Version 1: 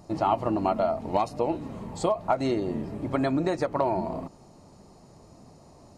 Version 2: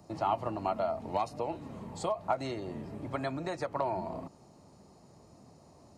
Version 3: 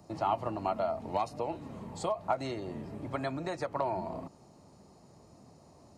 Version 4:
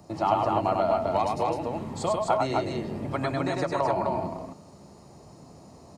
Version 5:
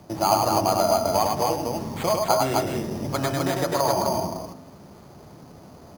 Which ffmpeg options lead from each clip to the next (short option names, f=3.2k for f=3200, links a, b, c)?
-filter_complex "[0:a]highpass=58,acrossover=split=150|510|3700[a][b][c][d];[b]acompressor=threshold=-37dB:ratio=6[e];[a][e][c][d]amix=inputs=4:normalize=0,volume=-5dB"
-af anull
-af "aecho=1:1:99.13|256.6:0.708|0.708,volume=5dB"
-af "acrusher=samples=8:mix=1:aa=0.000001,bandreject=f=52:t=h:w=4,bandreject=f=104:t=h:w=4,bandreject=f=156:t=h:w=4,bandreject=f=208:t=h:w=4,bandreject=f=260:t=h:w=4,bandreject=f=312:t=h:w=4,bandreject=f=364:t=h:w=4,bandreject=f=416:t=h:w=4,bandreject=f=468:t=h:w=4,bandreject=f=520:t=h:w=4,bandreject=f=572:t=h:w=4,bandreject=f=624:t=h:w=4,bandreject=f=676:t=h:w=4,bandreject=f=728:t=h:w=4,bandreject=f=780:t=h:w=4,bandreject=f=832:t=h:w=4,bandreject=f=884:t=h:w=4,bandreject=f=936:t=h:w=4,bandreject=f=988:t=h:w=4,bandreject=f=1.04k:t=h:w=4,bandreject=f=1.092k:t=h:w=4,bandreject=f=1.144k:t=h:w=4,bandreject=f=1.196k:t=h:w=4,bandreject=f=1.248k:t=h:w=4,bandreject=f=1.3k:t=h:w=4,bandreject=f=1.352k:t=h:w=4,bandreject=f=1.404k:t=h:w=4,bandreject=f=1.456k:t=h:w=4,bandreject=f=1.508k:t=h:w=4,bandreject=f=1.56k:t=h:w=4,bandreject=f=1.612k:t=h:w=4,bandreject=f=1.664k:t=h:w=4,bandreject=f=1.716k:t=h:w=4,bandreject=f=1.768k:t=h:w=4,bandreject=f=1.82k:t=h:w=4,bandreject=f=1.872k:t=h:w=4,bandreject=f=1.924k:t=h:w=4,bandreject=f=1.976k:t=h:w=4,volume=4dB"